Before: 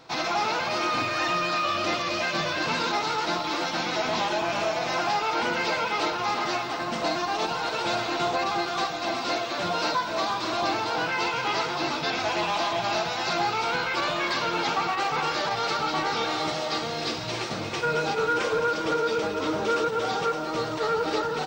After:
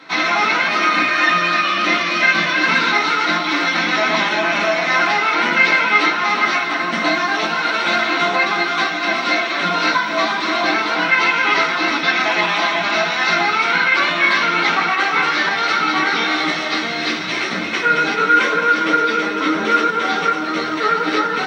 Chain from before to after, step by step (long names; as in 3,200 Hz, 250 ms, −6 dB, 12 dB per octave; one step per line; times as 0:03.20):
octave-band graphic EQ 125/2,000/4,000/8,000 Hz −6/+8/+8/+5 dB
convolution reverb, pre-delay 3 ms, DRR −0.5 dB
level −4.5 dB